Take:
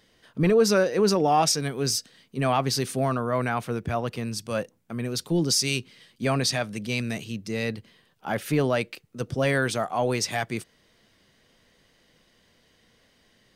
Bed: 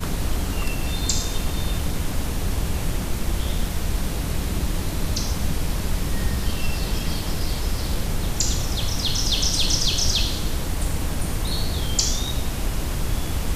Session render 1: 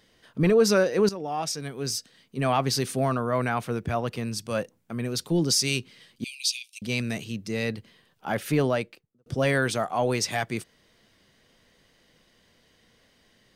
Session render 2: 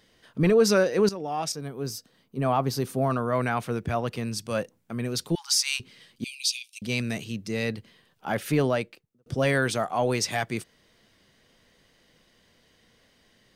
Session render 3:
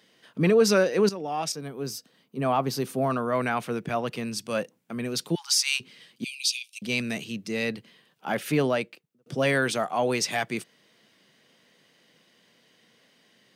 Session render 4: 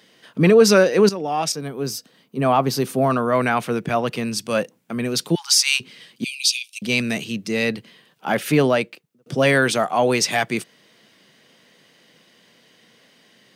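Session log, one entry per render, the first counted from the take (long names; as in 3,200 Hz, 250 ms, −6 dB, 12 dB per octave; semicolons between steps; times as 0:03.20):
0:01.09–0:02.63: fade in, from −14 dB; 0:06.24–0:06.82: Butterworth high-pass 2,400 Hz 96 dB per octave; 0:08.62–0:09.26: fade out and dull
0:01.52–0:03.10: flat-topped bell 4,000 Hz −8 dB 2.9 octaves; 0:05.35–0:05.80: linear-phase brick-wall high-pass 790 Hz
high-pass filter 140 Hz 24 dB per octave; parametric band 2,700 Hz +3 dB 0.77 octaves
level +7 dB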